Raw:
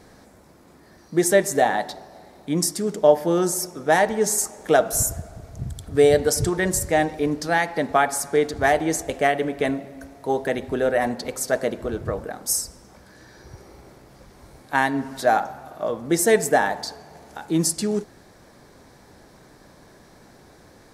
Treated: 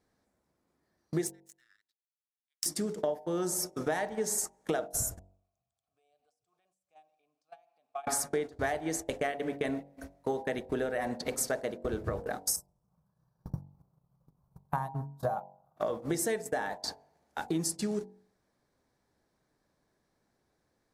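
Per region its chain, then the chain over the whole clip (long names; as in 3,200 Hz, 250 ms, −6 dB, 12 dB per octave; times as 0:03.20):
0:01.27–0:02.66: Butterworth high-pass 1,300 Hz 96 dB per octave + power curve on the samples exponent 2
0:05.19–0:08.07: drawn EQ curve 140 Hz 0 dB, 390 Hz −10 dB, 2,000 Hz −2 dB, 8,000 Hz +14 dB + downward compressor 8 to 1, threshold −28 dBFS + formant filter a
0:12.56–0:15.77: drawn EQ curve 100 Hz 0 dB, 160 Hz +14 dB, 270 Hz −15 dB, 490 Hz −7 dB, 1,100 Hz 0 dB, 1,900 Hz −22 dB, 4,200 Hz −16 dB, 9,200 Hz −11 dB, 13,000 Hz 0 dB + transient designer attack +5 dB, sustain −7 dB
whole clip: downward compressor 12 to 1, threshold −31 dBFS; noise gate −37 dBFS, range −29 dB; hum removal 47.27 Hz, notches 21; level +3 dB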